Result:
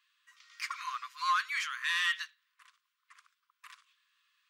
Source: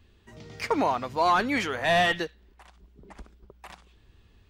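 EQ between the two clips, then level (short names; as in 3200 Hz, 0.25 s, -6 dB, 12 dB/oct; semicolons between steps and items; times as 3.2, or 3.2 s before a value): dynamic EQ 7300 Hz, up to +3 dB, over -43 dBFS, Q 0.82; brick-wall FIR high-pass 1000 Hz; -4.5 dB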